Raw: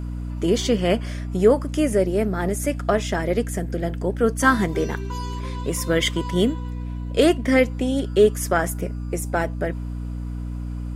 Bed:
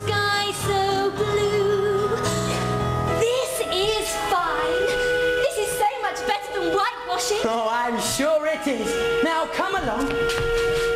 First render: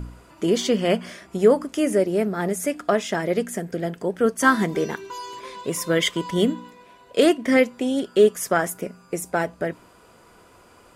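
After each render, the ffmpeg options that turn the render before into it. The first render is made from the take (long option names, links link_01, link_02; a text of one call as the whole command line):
ffmpeg -i in.wav -af "bandreject=frequency=60:width_type=h:width=4,bandreject=frequency=120:width_type=h:width=4,bandreject=frequency=180:width_type=h:width=4,bandreject=frequency=240:width_type=h:width=4,bandreject=frequency=300:width_type=h:width=4" out.wav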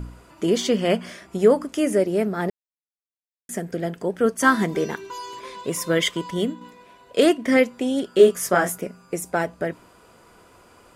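ffmpeg -i in.wav -filter_complex "[0:a]asettb=1/sr,asplit=3[link_01][link_02][link_03];[link_01]atrim=end=8.164[link_04];[link_02]atrim=start=8.16:end=8.78,asetpts=PTS-STARTPTS,afade=type=in:duration=0.004:curve=qsin,afade=type=out:start_time=0.616:duration=0.004:curve=qsin,asplit=2[link_05][link_06];[link_06]adelay=22,volume=-2.5dB[link_07];[link_05][link_07]amix=inputs=2:normalize=0,atrim=end_sample=27342[link_08];[link_03]atrim=start=8.776[link_09];[link_04][link_08]acrossfade=duration=0.004:curve1=hsin:curve2=qsin[link_10];[link_10][link_09]acrossfade=duration=0.004:curve1=qsin:curve2=hsin,asplit=4[link_11][link_12][link_13][link_14];[link_11]atrim=end=2.5,asetpts=PTS-STARTPTS,afade=type=out:start_time=2.496:duration=0.004:curve=hsin[link_15];[link_12]atrim=start=2.5:end=3.49,asetpts=PTS-STARTPTS,volume=0[link_16];[link_13]atrim=start=3.49:end=6.61,asetpts=PTS-STARTPTS,afade=type=in:duration=0.004:curve=hsin,afade=type=out:start_time=2.52:duration=0.6:silence=0.473151[link_17];[link_14]atrim=start=6.61,asetpts=PTS-STARTPTS,afade=type=in:duration=0.004:curve=hsin:silence=0.473151[link_18];[link_15][link_16][link_17][link_18]concat=n=4:v=0:a=1" out.wav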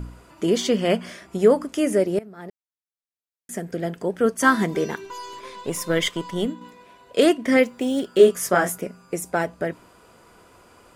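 ffmpeg -i in.wav -filter_complex "[0:a]asettb=1/sr,asplit=3[link_01][link_02][link_03];[link_01]atrim=end=5.054[link_04];[link_02]atrim=start=5.05:end=6.46,asetpts=PTS-STARTPTS,afade=type=in:duration=0.004:curve=qsin,afade=type=out:start_time=1.406:duration=0.004:curve=qsin,aeval=exprs='if(lt(val(0),0),0.708*val(0),val(0))':channel_layout=same[link_05];[link_03]atrim=start=6.456[link_06];[link_04][link_05]acrossfade=duration=0.004:curve1=hsin:curve2=qsin[link_07];[link_07][link_06]acrossfade=duration=0.004:curve1=qsin:curve2=hsin,asettb=1/sr,asplit=3[link_08][link_09][link_10];[link_08]atrim=end=7.634[link_11];[link_09]atrim=start=7.63:end=8.18,asetpts=PTS-STARTPTS,afade=type=in:duration=0.004:curve=qsin,afade=type=out:start_time=0.546:duration=0.004:curve=qsin,acrusher=bits=8:mode=log:mix=0:aa=0.000001[link_12];[link_10]atrim=start=8.176[link_13];[link_11][link_12]acrossfade=duration=0.004:curve1=hsin:curve2=qsin[link_14];[link_14][link_13]acrossfade=duration=0.004:curve1=qsin:curve2=hsin,asplit=2[link_15][link_16];[link_15]atrim=end=2.19,asetpts=PTS-STARTPTS,afade=type=out:start_time=2.186:duration=0.004:curve=hsin:silence=0.0944061[link_17];[link_16]atrim=start=2.19,asetpts=PTS-STARTPTS,afade=type=in:duration=1.71:silence=0.0944061[link_18];[link_17][link_18]concat=n=2:v=0:a=1" out.wav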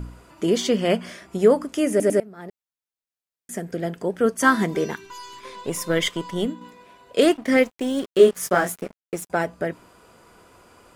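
ffmpeg -i in.wav -filter_complex "[0:a]asettb=1/sr,asplit=3[link_01][link_02][link_03];[link_01]atrim=end=4.934[link_04];[link_02]atrim=start=4.93:end=5.45,asetpts=PTS-STARTPTS,afade=type=in:duration=0.004:curve=qsin,afade=type=out:start_time=0.516:duration=0.004:curve=qsin,equalizer=frequency=530:width=1.3:gain=-13[link_05];[link_03]atrim=start=5.446[link_06];[link_04][link_05]acrossfade=duration=0.004:curve1=hsin:curve2=qsin[link_07];[link_07][link_06]acrossfade=duration=0.004:curve1=qsin:curve2=hsin,asettb=1/sr,asplit=3[link_08][link_09][link_10];[link_08]atrim=end=7.244[link_11];[link_09]atrim=start=7.24:end=9.3,asetpts=PTS-STARTPTS,afade=type=in:duration=0.004:curve=qsin,afade=type=out:start_time=2.056:duration=0.004:curve=qsin,aeval=exprs='sgn(val(0))*max(abs(val(0))-0.0119,0)':channel_layout=same[link_12];[link_10]atrim=start=9.296[link_13];[link_11][link_12]acrossfade=duration=0.004:curve1=hsin:curve2=qsin[link_14];[link_14][link_13]acrossfade=duration=0.004:curve1=qsin:curve2=hsin,asplit=4[link_15][link_16][link_17][link_18];[link_15]atrim=end=2.002[link_19];[link_16]atrim=start=1.898:end=2.002[link_20];[link_17]atrim=start=1.898:end=2.002[link_21];[link_18]atrim=start=2.198[link_22];[link_19][link_20]acrossfade=duration=0.004:curve1=hsin:curve2=hsin[link_23];[link_23][link_21]acrossfade=duration=0.004:curve1=hsin:curve2=hsin[link_24];[link_24][link_22]acrossfade=duration=0.004:curve1=hsin:curve2=hsin" out.wav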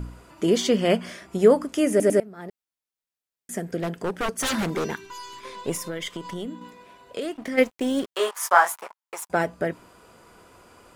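ffmpeg -i in.wav -filter_complex "[0:a]asettb=1/sr,asplit=3[link_01][link_02][link_03];[link_01]atrim=end=3.824[link_04];[link_02]atrim=start=3.82:end=4.94,asetpts=PTS-STARTPTS,afade=type=in:duration=0.004:curve=qsin,afade=type=out:start_time=1.116:duration=0.004:curve=qsin,aeval=exprs='0.1*(abs(mod(val(0)/0.1+3,4)-2)-1)':channel_layout=same[link_05];[link_03]atrim=start=4.936[link_06];[link_04][link_05]acrossfade=duration=0.004:curve1=hsin:curve2=qsin[link_07];[link_07][link_06]acrossfade=duration=0.004:curve1=qsin:curve2=hsin,asplit=3[link_08][link_09][link_10];[link_08]afade=type=out:start_time=5.76:duration=0.02[link_11];[link_09]acompressor=threshold=-29dB:ratio=4:attack=3.2:release=140:knee=1:detection=peak,afade=type=in:start_time=5.76:duration=0.02,afade=type=out:start_time=7.57:duration=0.02[link_12];[link_10]afade=type=in:start_time=7.57:duration=0.02[link_13];[link_11][link_12][link_13]amix=inputs=3:normalize=0,asettb=1/sr,asplit=3[link_14][link_15][link_16];[link_14]atrim=end=8.154[link_17];[link_15]atrim=start=8.15:end=9.29,asetpts=PTS-STARTPTS,afade=type=in:duration=0.004:curve=qsin,afade=type=out:start_time=1.136:duration=0.004:curve=qsin,highpass=frequency=950:width_type=q:width=4.9[link_18];[link_16]atrim=start=9.286[link_19];[link_17][link_18]acrossfade=duration=0.004:curve1=hsin:curve2=qsin[link_20];[link_20][link_19]acrossfade=duration=0.004:curve1=qsin:curve2=hsin" out.wav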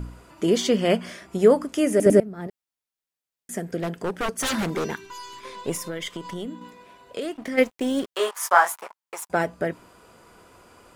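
ffmpeg -i in.wav -filter_complex "[0:a]asettb=1/sr,asplit=3[link_01][link_02][link_03];[link_01]atrim=end=2.064[link_04];[link_02]atrim=start=2.06:end=2.47,asetpts=PTS-STARTPTS,afade=type=in:duration=0.004:curve=qsin,afade=type=out:start_time=0.406:duration=0.004:curve=qsin,lowshelf=frequency=330:gain=10.5[link_05];[link_03]atrim=start=2.466[link_06];[link_04][link_05]acrossfade=duration=0.004:curve1=hsin:curve2=qsin[link_07];[link_07][link_06]acrossfade=duration=0.004:curve1=qsin:curve2=hsin" out.wav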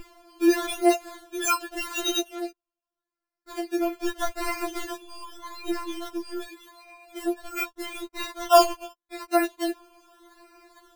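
ffmpeg -i in.wav -af "acrusher=samples=18:mix=1:aa=0.000001:lfo=1:lforange=10.8:lforate=0.83,afftfilt=real='re*4*eq(mod(b,16),0)':imag='im*4*eq(mod(b,16),0)':win_size=2048:overlap=0.75" out.wav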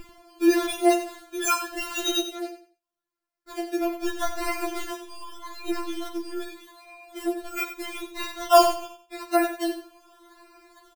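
ffmpeg -i in.wav -filter_complex "[0:a]asplit=2[link_01][link_02];[link_02]adelay=42,volume=-14dB[link_03];[link_01][link_03]amix=inputs=2:normalize=0,aecho=1:1:91|182|273:0.299|0.0687|0.0158" out.wav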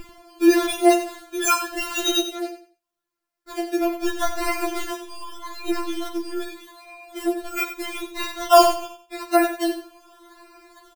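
ffmpeg -i in.wav -af "volume=4dB,alimiter=limit=-1dB:level=0:latency=1" out.wav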